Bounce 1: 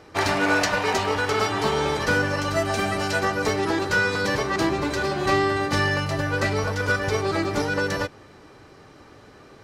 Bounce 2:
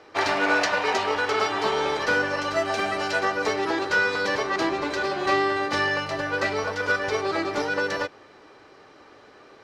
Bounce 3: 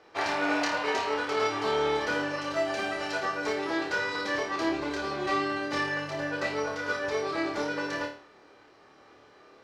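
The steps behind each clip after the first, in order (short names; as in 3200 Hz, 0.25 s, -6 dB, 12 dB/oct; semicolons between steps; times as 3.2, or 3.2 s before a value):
three-band isolator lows -14 dB, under 290 Hz, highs -13 dB, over 6100 Hz
flutter echo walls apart 4.7 m, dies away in 0.41 s; gain -7.5 dB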